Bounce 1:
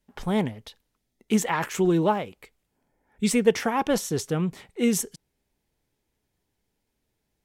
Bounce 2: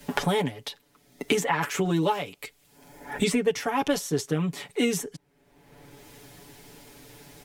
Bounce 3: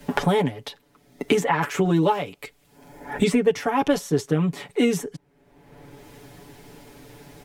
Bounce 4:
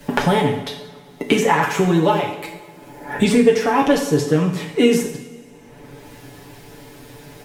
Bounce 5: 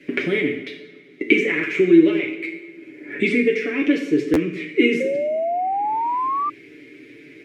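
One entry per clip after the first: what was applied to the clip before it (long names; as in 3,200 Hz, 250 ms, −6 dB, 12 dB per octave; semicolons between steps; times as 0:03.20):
low-shelf EQ 74 Hz −11 dB; comb filter 7 ms, depth 92%; multiband upward and downward compressor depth 100%; level −2.5 dB
high-shelf EQ 2,300 Hz −8 dB; level +5 dB
coupled-rooms reverb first 0.68 s, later 2.7 s, from −18 dB, DRR 1.5 dB; level +3.5 dB
pair of resonant band-passes 870 Hz, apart 2.7 octaves; sound drawn into the spectrogram rise, 0:05.00–0:06.50, 520–1,200 Hz −31 dBFS; buffer that repeats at 0:04.33, samples 512, times 2; level +9 dB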